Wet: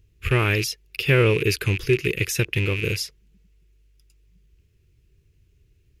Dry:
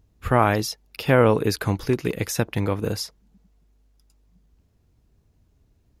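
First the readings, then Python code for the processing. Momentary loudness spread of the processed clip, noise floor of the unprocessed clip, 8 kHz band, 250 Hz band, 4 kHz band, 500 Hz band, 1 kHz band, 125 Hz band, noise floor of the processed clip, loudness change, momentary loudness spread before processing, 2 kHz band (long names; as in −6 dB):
9 LU, −64 dBFS, +1.5 dB, −3.0 dB, +4.0 dB, −1.5 dB, −9.5 dB, +2.5 dB, −62 dBFS, +0.5 dB, 12 LU, +5.0 dB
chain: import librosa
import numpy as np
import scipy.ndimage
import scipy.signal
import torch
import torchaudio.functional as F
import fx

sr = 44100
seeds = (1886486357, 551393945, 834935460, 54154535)

y = fx.rattle_buzz(x, sr, strikes_db=-35.0, level_db=-23.0)
y = fx.curve_eq(y, sr, hz=(140.0, 250.0, 380.0, 740.0, 2600.0, 3800.0), db=(0, -13, 2, -20, 7, -1))
y = y * 10.0 ** (2.5 / 20.0)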